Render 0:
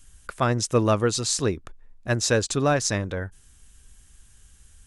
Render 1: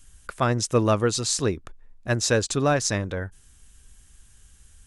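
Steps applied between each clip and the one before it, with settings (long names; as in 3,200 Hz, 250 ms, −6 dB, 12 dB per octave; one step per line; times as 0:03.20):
no processing that can be heard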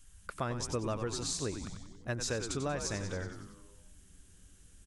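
on a send: echo with shifted repeats 93 ms, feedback 57%, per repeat −100 Hz, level −9 dB
on the sum: downward compressor 3 to 1, threshold −27 dBFS, peak gain reduction 9.5 dB
level −6.5 dB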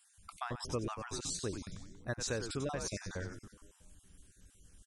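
time-frequency cells dropped at random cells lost 26%
level −1.5 dB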